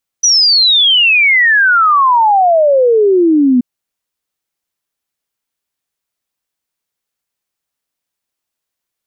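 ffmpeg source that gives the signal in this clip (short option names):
-f lavfi -i "aevalsrc='0.501*clip(min(t,3.38-t)/0.01,0,1)*sin(2*PI*6000*3.38/log(240/6000)*(exp(log(240/6000)*t/3.38)-1))':d=3.38:s=44100"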